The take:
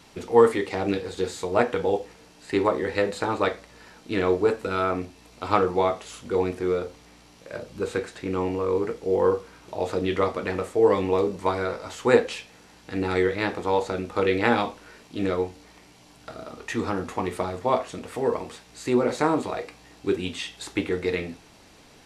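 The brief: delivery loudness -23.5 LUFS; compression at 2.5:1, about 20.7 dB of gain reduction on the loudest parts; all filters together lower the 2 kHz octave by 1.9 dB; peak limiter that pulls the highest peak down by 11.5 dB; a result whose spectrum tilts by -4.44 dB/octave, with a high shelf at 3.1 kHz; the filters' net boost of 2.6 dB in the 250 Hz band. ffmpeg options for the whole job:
-af "equalizer=f=250:t=o:g=3.5,equalizer=f=2000:t=o:g=-4,highshelf=f=3100:g=4.5,acompressor=threshold=0.00708:ratio=2.5,volume=10,alimiter=limit=0.251:level=0:latency=1"

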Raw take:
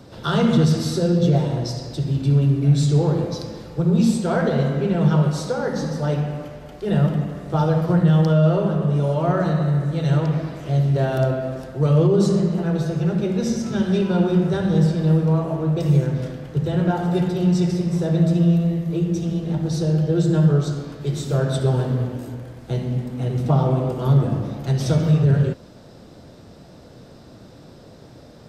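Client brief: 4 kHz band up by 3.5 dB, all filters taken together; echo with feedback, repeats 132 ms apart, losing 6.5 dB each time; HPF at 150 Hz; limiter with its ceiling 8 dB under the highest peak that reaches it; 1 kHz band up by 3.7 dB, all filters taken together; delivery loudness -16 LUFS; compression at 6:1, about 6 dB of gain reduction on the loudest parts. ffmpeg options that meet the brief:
-af "highpass=150,equalizer=f=1000:t=o:g=5,equalizer=f=4000:t=o:g=4,acompressor=threshold=0.1:ratio=6,alimiter=limit=0.126:level=0:latency=1,aecho=1:1:132|264|396|528|660|792:0.473|0.222|0.105|0.0491|0.0231|0.0109,volume=3.16"

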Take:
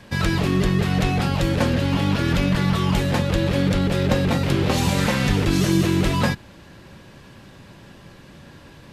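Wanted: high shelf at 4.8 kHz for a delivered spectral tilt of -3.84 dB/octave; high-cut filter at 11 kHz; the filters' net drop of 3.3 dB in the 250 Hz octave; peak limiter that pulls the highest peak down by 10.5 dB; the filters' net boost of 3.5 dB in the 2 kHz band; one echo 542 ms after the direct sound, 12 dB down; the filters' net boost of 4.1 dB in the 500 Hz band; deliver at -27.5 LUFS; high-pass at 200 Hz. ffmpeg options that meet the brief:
-af "highpass=200,lowpass=11000,equalizer=f=250:t=o:g=-3.5,equalizer=f=500:t=o:g=6,equalizer=f=2000:t=o:g=5,highshelf=f=4800:g=-5.5,alimiter=limit=0.158:level=0:latency=1,aecho=1:1:542:0.251,volume=0.708"

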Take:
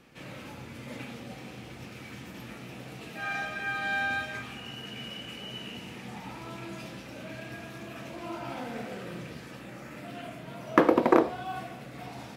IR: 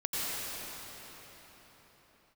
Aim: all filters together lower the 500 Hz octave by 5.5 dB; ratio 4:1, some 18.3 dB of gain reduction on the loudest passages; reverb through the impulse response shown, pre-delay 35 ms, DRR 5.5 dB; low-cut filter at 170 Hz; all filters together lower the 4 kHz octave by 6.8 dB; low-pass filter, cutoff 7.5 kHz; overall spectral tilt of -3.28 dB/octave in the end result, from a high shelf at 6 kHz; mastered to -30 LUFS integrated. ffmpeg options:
-filter_complex "[0:a]highpass=170,lowpass=7500,equalizer=f=500:t=o:g=-7,equalizer=f=4000:t=o:g=-8,highshelf=f=6000:g=-7.5,acompressor=threshold=0.00794:ratio=4,asplit=2[s0][s1];[1:a]atrim=start_sample=2205,adelay=35[s2];[s1][s2]afir=irnorm=-1:irlink=0,volume=0.2[s3];[s0][s3]amix=inputs=2:normalize=0,volume=5.62"

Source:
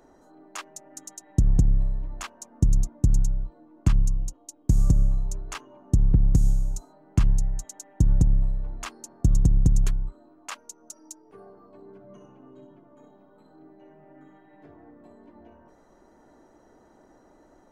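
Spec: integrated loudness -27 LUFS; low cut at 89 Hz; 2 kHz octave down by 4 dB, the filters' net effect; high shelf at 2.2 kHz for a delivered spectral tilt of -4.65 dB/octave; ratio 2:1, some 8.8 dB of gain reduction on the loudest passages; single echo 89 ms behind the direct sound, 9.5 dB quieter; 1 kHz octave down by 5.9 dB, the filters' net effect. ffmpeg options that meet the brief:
-af "highpass=89,equalizer=f=1000:t=o:g=-7,equalizer=f=2000:t=o:g=-8.5,highshelf=f=2200:g=8.5,acompressor=threshold=0.0224:ratio=2,aecho=1:1:89:0.335,volume=2.82"

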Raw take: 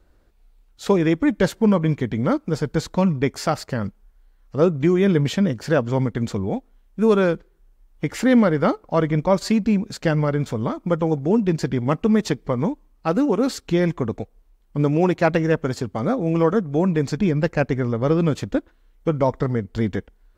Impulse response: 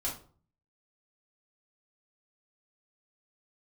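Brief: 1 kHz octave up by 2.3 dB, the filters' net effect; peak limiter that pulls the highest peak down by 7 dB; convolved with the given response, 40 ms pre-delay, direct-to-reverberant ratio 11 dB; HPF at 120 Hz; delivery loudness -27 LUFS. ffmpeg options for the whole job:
-filter_complex "[0:a]highpass=120,equalizer=f=1000:t=o:g=3,alimiter=limit=0.316:level=0:latency=1,asplit=2[s0][s1];[1:a]atrim=start_sample=2205,adelay=40[s2];[s1][s2]afir=irnorm=-1:irlink=0,volume=0.2[s3];[s0][s3]amix=inputs=2:normalize=0,volume=0.562"

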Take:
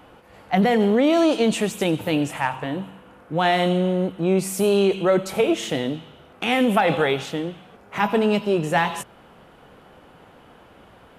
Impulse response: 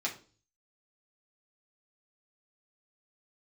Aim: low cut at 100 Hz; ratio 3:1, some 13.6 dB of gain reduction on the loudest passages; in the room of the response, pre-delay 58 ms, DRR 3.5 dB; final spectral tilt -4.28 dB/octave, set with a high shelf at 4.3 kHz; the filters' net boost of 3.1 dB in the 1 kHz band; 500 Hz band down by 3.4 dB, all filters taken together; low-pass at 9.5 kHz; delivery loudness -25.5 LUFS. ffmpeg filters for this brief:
-filter_complex "[0:a]highpass=100,lowpass=9500,equalizer=f=500:t=o:g=-6.5,equalizer=f=1000:t=o:g=7,highshelf=f=4300:g=5,acompressor=threshold=0.0251:ratio=3,asplit=2[s0][s1];[1:a]atrim=start_sample=2205,adelay=58[s2];[s1][s2]afir=irnorm=-1:irlink=0,volume=0.398[s3];[s0][s3]amix=inputs=2:normalize=0,volume=2"

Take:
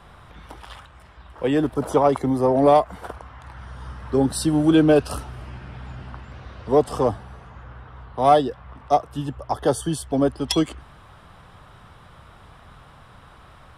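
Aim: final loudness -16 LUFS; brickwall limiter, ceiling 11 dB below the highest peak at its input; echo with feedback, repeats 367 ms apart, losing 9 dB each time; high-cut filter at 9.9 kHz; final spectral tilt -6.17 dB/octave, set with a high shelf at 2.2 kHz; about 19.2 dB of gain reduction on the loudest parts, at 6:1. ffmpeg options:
-af "lowpass=9900,highshelf=f=2200:g=-6,acompressor=threshold=0.0224:ratio=6,alimiter=level_in=2.51:limit=0.0631:level=0:latency=1,volume=0.398,aecho=1:1:367|734|1101|1468:0.355|0.124|0.0435|0.0152,volume=20"

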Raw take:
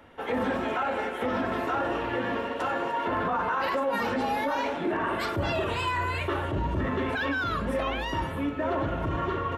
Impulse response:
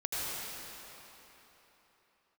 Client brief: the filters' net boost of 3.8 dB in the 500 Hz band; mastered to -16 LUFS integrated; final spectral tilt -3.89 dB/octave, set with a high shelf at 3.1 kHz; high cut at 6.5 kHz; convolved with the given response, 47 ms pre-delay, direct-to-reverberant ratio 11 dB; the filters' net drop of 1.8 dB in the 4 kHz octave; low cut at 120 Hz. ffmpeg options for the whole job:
-filter_complex "[0:a]highpass=120,lowpass=6500,equalizer=f=500:t=o:g=4.5,highshelf=f=3100:g=5.5,equalizer=f=4000:t=o:g=-6.5,asplit=2[s0][s1];[1:a]atrim=start_sample=2205,adelay=47[s2];[s1][s2]afir=irnorm=-1:irlink=0,volume=0.133[s3];[s0][s3]amix=inputs=2:normalize=0,volume=3.35"

